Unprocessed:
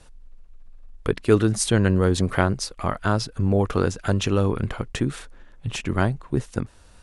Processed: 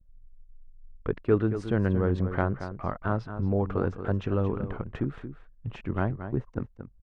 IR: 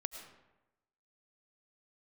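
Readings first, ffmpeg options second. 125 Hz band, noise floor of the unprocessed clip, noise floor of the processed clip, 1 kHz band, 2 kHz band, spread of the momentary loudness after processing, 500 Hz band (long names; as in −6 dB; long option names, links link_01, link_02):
−5.5 dB, −49 dBFS, −56 dBFS, −6.5 dB, −9.0 dB, 13 LU, −5.5 dB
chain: -filter_complex "[0:a]anlmdn=0.158,lowpass=1600,asplit=2[link_01][link_02];[link_02]adelay=227.4,volume=-10dB,highshelf=frequency=4000:gain=-5.12[link_03];[link_01][link_03]amix=inputs=2:normalize=0,volume=-6dB"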